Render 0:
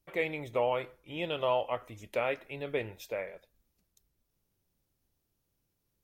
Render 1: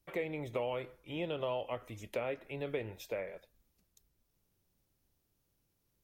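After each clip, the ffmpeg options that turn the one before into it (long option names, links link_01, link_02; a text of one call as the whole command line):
ffmpeg -i in.wav -filter_complex "[0:a]acrossover=split=520|1500[link_01][link_02][link_03];[link_01]acompressor=threshold=-37dB:ratio=4[link_04];[link_02]acompressor=threshold=-45dB:ratio=4[link_05];[link_03]acompressor=threshold=-48dB:ratio=4[link_06];[link_04][link_05][link_06]amix=inputs=3:normalize=0,volume=1dB" out.wav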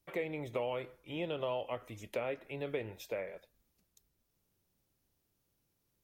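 ffmpeg -i in.wav -af "lowshelf=frequency=61:gain=-6.5" out.wav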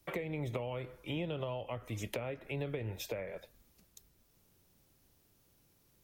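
ffmpeg -i in.wav -filter_complex "[0:a]acrossover=split=160[link_01][link_02];[link_02]acompressor=threshold=-48dB:ratio=6[link_03];[link_01][link_03]amix=inputs=2:normalize=0,volume=10dB" out.wav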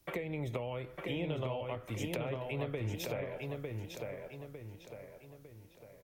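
ffmpeg -i in.wav -filter_complex "[0:a]asplit=2[link_01][link_02];[link_02]adelay=903,lowpass=frequency=3700:poles=1,volume=-3dB,asplit=2[link_03][link_04];[link_04]adelay=903,lowpass=frequency=3700:poles=1,volume=0.45,asplit=2[link_05][link_06];[link_06]adelay=903,lowpass=frequency=3700:poles=1,volume=0.45,asplit=2[link_07][link_08];[link_08]adelay=903,lowpass=frequency=3700:poles=1,volume=0.45,asplit=2[link_09][link_10];[link_10]adelay=903,lowpass=frequency=3700:poles=1,volume=0.45,asplit=2[link_11][link_12];[link_12]adelay=903,lowpass=frequency=3700:poles=1,volume=0.45[link_13];[link_01][link_03][link_05][link_07][link_09][link_11][link_13]amix=inputs=7:normalize=0" out.wav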